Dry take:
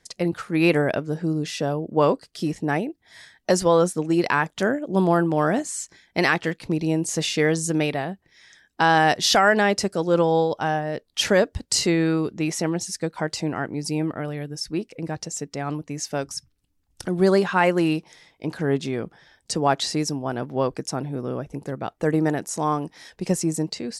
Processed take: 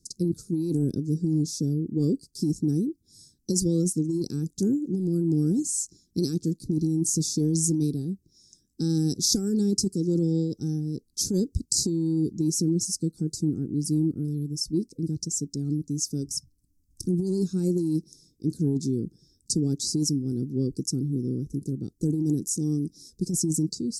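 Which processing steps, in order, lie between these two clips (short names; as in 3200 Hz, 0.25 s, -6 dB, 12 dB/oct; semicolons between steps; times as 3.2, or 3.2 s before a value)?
13.15–13.91 dynamic EQ 4900 Hz, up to -6 dB, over -44 dBFS, Q 0.96; inverse Chebyshev band-stop 600–3100 Hz, stop band 40 dB; negative-ratio compressor -25 dBFS, ratio -1; gain +2 dB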